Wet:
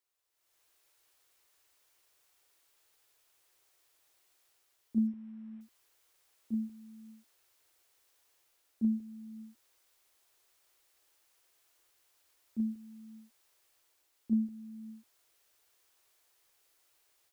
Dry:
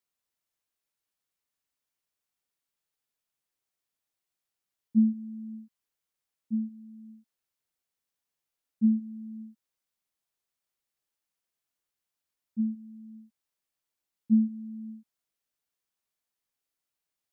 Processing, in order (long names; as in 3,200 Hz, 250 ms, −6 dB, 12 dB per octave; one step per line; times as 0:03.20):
automatic gain control gain up to 15.5 dB
drawn EQ curve 120 Hz 0 dB, 170 Hz −29 dB, 330 Hz +4 dB
0:05.07–0:05.61: linearly interpolated sample-rate reduction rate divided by 8×
level −3.5 dB